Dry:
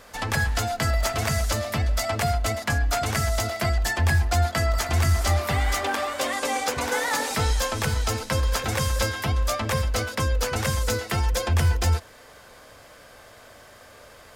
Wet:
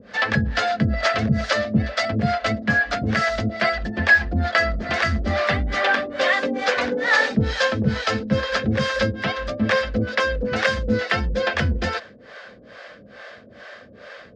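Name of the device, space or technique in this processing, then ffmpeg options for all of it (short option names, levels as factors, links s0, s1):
guitar amplifier with harmonic tremolo: -filter_complex "[0:a]acrossover=split=440[s0][s1];[s0]aeval=exprs='val(0)*(1-1/2+1/2*cos(2*PI*2.3*n/s))':c=same[s2];[s1]aeval=exprs='val(0)*(1-1/2-1/2*cos(2*PI*2.3*n/s))':c=same[s3];[s2][s3]amix=inputs=2:normalize=0,asoftclip=type=tanh:threshold=0.133,highpass=84,equalizer=f=89:t=q:w=4:g=-5,equalizer=f=210:t=q:w=4:g=10,equalizer=f=540:t=q:w=4:g=5,equalizer=f=920:t=q:w=4:g=-8,equalizer=f=1700:t=q:w=4:g=7,lowpass=f=4600:w=0.5412,lowpass=f=4600:w=1.3066,volume=2.82"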